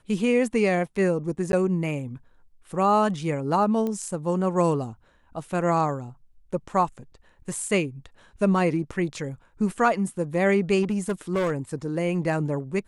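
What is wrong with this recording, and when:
0:01.52–0:01.53: drop-out 11 ms
0:03.87: click −18 dBFS
0:10.82–0:11.53: clipping −20.5 dBFS

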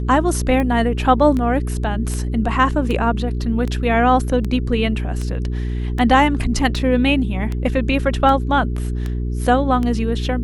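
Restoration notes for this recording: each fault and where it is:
mains hum 60 Hz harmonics 7 −22 dBFS
scratch tick 78 rpm −13 dBFS

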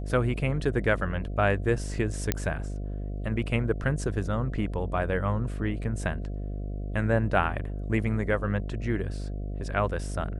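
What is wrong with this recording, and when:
mains buzz 50 Hz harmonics 14 −33 dBFS
0:02.32: click −9 dBFS

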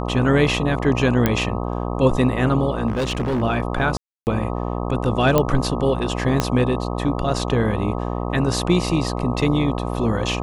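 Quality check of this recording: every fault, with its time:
mains buzz 60 Hz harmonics 21 −25 dBFS
0:01.26: click −4 dBFS
0:02.87–0:03.42: clipping −18.5 dBFS
0:03.97–0:04.27: drop-out 299 ms
0:05.38: click −4 dBFS
0:06.40: click −4 dBFS

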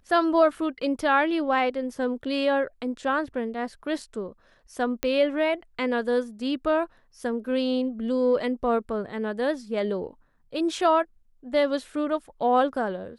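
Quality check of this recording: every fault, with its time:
0:05.03: click −10 dBFS

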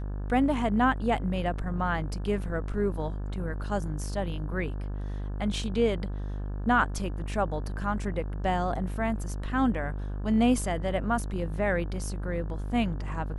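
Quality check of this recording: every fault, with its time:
mains buzz 50 Hz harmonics 35 −33 dBFS

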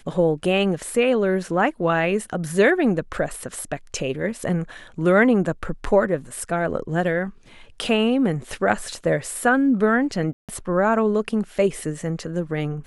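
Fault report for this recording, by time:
0:10.33–0:10.49: drop-out 157 ms

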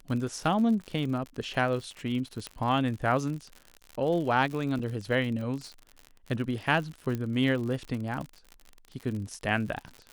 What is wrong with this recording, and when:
surface crackle 71 per second −35 dBFS
0:02.47: click −19 dBFS
0:04.79–0:04.80: drop-out 5.5 ms
0:07.15: click −20 dBFS

